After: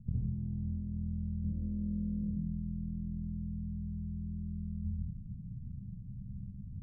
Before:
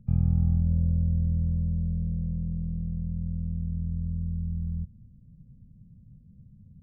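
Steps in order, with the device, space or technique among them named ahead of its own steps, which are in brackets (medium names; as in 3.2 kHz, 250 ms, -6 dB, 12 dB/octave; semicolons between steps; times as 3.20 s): 1.44–2.23 s: graphic EQ 125/250/500 Hz -12/+9/+10 dB; television next door (compression 4:1, threshold -35 dBFS, peak gain reduction 14 dB; low-pass 260 Hz 12 dB/octave; reverberation RT60 0.75 s, pre-delay 46 ms, DRR -4.5 dB); trim +1 dB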